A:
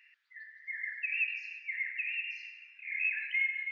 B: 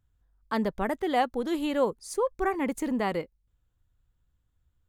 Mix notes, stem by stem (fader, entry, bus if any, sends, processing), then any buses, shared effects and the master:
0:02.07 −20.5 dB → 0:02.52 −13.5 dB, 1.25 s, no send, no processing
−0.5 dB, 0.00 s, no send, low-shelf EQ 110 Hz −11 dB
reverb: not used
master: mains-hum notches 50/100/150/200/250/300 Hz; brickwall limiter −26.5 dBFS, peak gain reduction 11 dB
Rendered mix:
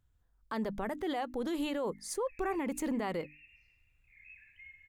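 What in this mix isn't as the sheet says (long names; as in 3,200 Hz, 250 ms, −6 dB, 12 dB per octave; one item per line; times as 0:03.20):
stem A −20.5 dB → −30.0 dB
stem B: missing low-shelf EQ 110 Hz −11 dB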